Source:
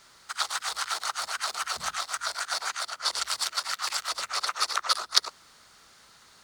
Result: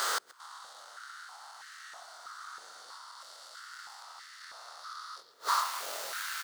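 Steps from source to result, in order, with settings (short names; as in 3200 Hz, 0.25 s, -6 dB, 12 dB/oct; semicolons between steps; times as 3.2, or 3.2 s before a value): stepped spectrum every 0.4 s; bell 2400 Hz -10.5 dB 0.32 oct; bit-crush 9-bit; doubler 24 ms -4.5 dB; delay with a stepping band-pass 0.113 s, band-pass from 3700 Hz, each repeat -0.7 oct, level -9 dB; flipped gate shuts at -36 dBFS, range -34 dB; added noise brown -77 dBFS; 1.54–2.98 flutter echo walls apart 10.4 m, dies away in 0.75 s; 3.72–4.73 transient shaper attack +5 dB, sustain +9 dB; stepped high-pass 3.1 Hz 460–1800 Hz; gain +15.5 dB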